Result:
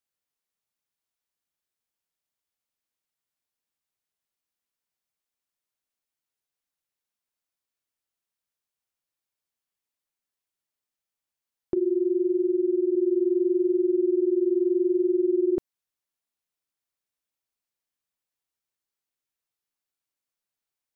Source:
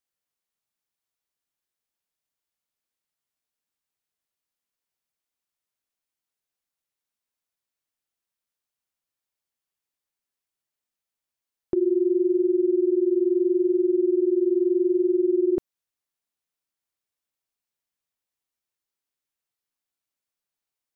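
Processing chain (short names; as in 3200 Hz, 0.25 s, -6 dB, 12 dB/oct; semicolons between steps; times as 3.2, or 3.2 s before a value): 11.77–12.95 tone controls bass -5 dB, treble +2 dB; gain -1.5 dB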